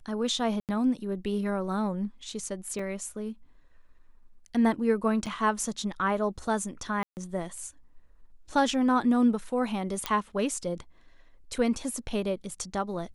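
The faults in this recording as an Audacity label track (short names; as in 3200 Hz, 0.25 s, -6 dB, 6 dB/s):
0.600000	0.690000	gap 88 ms
2.790000	2.790000	gap 3.3 ms
5.260000	5.270000	gap 6 ms
7.030000	7.170000	gap 0.139 s
10.060000	10.060000	pop -12 dBFS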